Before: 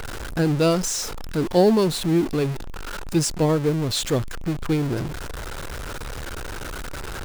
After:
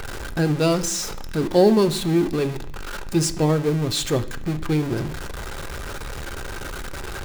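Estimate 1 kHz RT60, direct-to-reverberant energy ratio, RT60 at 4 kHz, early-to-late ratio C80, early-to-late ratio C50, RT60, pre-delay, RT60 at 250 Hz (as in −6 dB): 0.65 s, 7.0 dB, 0.80 s, 19.0 dB, 15.5 dB, 0.65 s, 3 ms, 0.90 s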